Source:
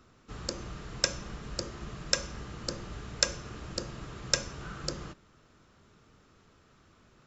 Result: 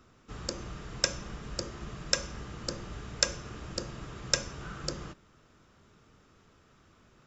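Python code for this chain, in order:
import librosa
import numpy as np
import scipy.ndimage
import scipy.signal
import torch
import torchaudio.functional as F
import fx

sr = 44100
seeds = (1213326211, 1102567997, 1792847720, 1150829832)

y = fx.notch(x, sr, hz=4200.0, q=18.0)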